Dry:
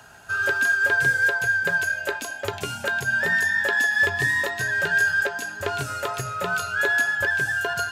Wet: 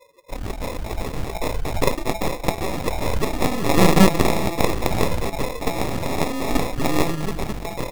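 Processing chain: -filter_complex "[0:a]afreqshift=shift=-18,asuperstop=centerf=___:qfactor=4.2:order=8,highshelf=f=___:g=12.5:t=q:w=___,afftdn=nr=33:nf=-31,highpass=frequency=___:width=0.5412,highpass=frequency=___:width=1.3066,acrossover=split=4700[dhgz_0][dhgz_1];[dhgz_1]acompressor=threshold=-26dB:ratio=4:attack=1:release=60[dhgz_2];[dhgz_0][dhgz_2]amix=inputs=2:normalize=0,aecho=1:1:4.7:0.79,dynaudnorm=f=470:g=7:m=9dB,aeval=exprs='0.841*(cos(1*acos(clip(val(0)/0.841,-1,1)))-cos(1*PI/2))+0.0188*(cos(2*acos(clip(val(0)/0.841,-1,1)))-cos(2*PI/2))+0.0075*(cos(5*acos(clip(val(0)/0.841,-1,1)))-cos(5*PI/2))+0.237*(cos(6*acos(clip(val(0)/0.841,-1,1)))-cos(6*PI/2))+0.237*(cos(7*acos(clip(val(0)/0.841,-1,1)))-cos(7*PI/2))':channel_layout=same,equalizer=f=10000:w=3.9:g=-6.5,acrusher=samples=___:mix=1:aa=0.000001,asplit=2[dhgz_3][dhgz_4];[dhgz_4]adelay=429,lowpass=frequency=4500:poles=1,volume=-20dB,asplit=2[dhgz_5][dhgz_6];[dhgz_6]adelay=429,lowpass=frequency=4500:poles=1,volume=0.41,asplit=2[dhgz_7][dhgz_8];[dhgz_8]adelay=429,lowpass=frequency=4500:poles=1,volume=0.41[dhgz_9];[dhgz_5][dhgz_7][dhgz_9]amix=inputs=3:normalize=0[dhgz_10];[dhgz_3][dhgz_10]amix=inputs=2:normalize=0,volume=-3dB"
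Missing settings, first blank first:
5100, 4300, 3, 400, 400, 29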